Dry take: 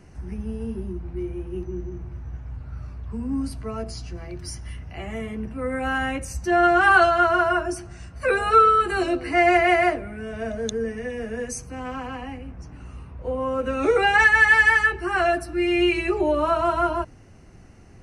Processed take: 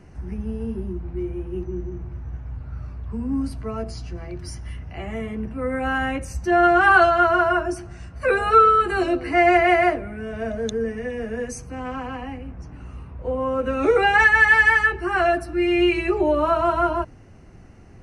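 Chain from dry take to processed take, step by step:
high-shelf EQ 3,700 Hz −7 dB
level +2 dB

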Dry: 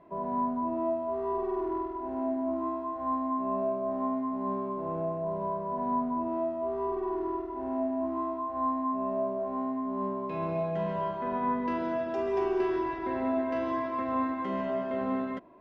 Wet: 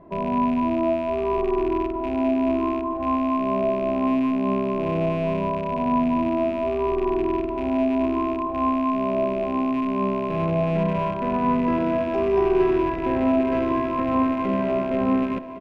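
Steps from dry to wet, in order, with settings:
loose part that buzzes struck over −44 dBFS, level −31 dBFS
spectral tilt −2.5 dB per octave
on a send: repeating echo 1,108 ms, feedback 60%, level −15.5 dB
on the sum: level +5.5 dB

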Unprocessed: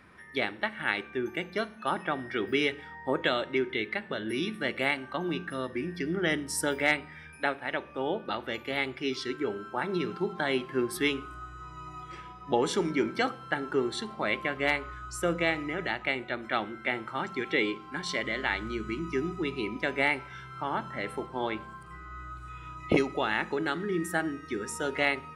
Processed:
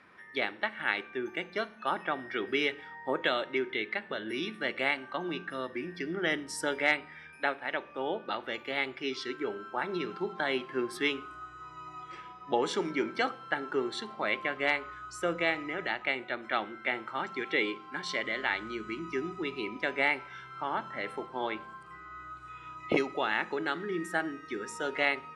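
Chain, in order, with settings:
high-pass filter 380 Hz 6 dB per octave
high-frequency loss of the air 61 metres

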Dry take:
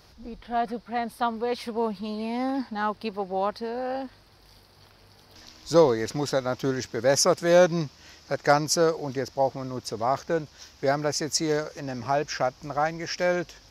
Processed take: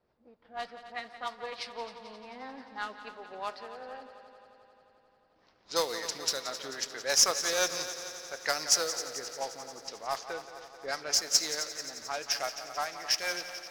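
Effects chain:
meter weighting curve ITU-R 468
rotating-speaker cabinet horn 6 Hz
low-shelf EQ 300 Hz −6 dB
log-companded quantiser 4 bits
low-pass that shuts in the quiet parts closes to 520 Hz, open at −22.5 dBFS
echo machine with several playback heads 88 ms, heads second and third, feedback 66%, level −13 dB
on a send at −16.5 dB: convolution reverb RT60 0.75 s, pre-delay 5 ms
on the sum: level −5.5 dB

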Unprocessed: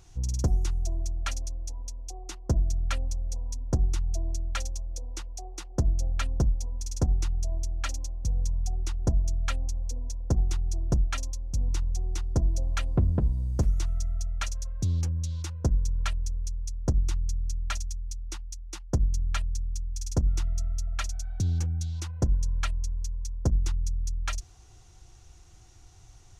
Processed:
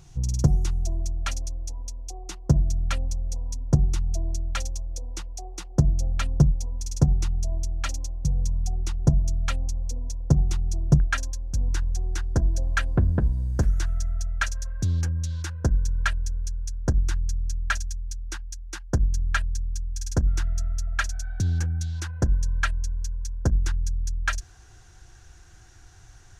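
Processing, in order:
parametric band 150 Hz +14.5 dB 0.34 octaves, from 0:11.00 1,600 Hz
level +2.5 dB

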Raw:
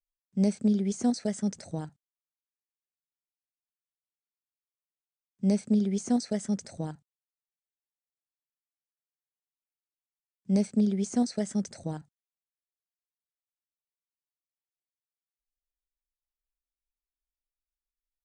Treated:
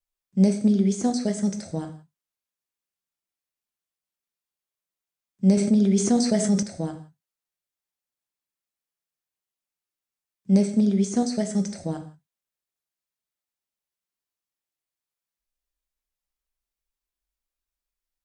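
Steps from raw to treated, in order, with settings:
tape wow and flutter 22 cents
reverb whose tail is shaped and stops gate 200 ms falling, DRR 5.5 dB
0:05.57–0:06.63: envelope flattener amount 50%
level +4 dB

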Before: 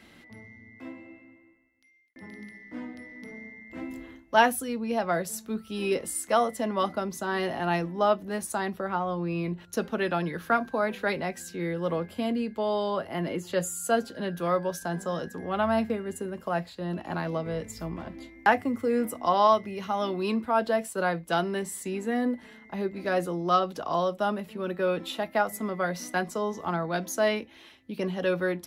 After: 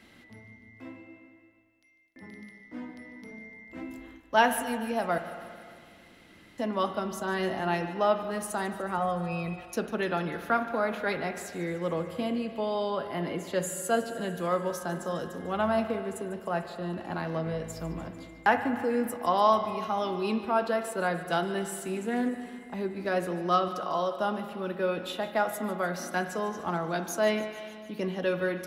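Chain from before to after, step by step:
0:05.18–0:06.58: fill with room tone
0:08.98–0:09.63: comb filter 1.6 ms, depth 79%
0:23.68–0:24.16: low-shelf EQ 160 Hz −12 dB
delay with a high-pass on its return 148 ms, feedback 70%, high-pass 1,900 Hz, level −15.5 dB
spring reverb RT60 2 s, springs 37/56 ms, chirp 50 ms, DRR 8 dB
0:21.88–0:22.29: highs frequency-modulated by the lows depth 0.11 ms
level −2 dB

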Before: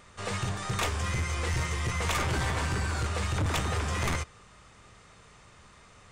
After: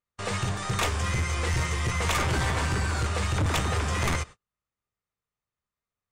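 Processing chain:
noise gate −43 dBFS, range −41 dB
level +3 dB

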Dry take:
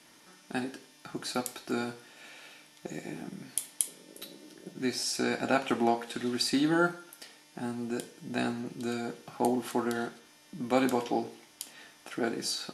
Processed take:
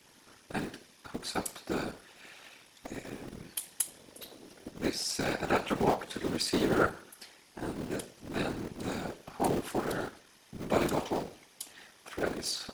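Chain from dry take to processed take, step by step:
sub-harmonics by changed cycles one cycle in 3, muted
random phases in short frames

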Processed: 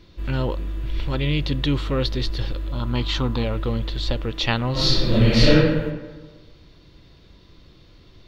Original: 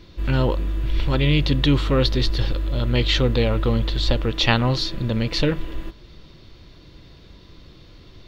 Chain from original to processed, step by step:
0:02.72–0:03.44: octave-band graphic EQ 250/500/1,000/2,000 Hz +4/−8/+12/−6 dB
0:04.72–0:05.54: thrown reverb, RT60 1.3 s, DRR −11 dB
level −4 dB

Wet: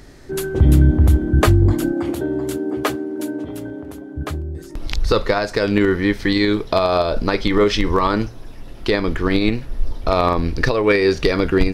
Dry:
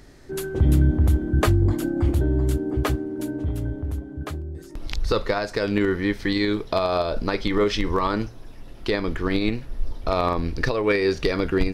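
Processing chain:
0:01.93–0:04.16: high-pass filter 260 Hz 12 dB per octave
level +5.5 dB

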